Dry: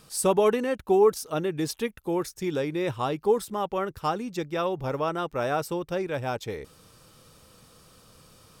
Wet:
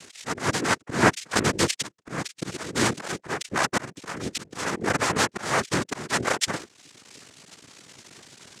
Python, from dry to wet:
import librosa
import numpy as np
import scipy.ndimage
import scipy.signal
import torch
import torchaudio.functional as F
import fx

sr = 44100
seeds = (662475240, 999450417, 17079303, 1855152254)

y = fx.cycle_switch(x, sr, every=3, mode='muted')
y = fx.dereverb_blind(y, sr, rt60_s=0.92)
y = fx.auto_swell(y, sr, attack_ms=267.0)
y = fx.lowpass_res(y, sr, hz=3400.0, q=5.5)
y = fx.noise_vocoder(y, sr, seeds[0], bands=3)
y = F.gain(torch.from_numpy(y), 7.5).numpy()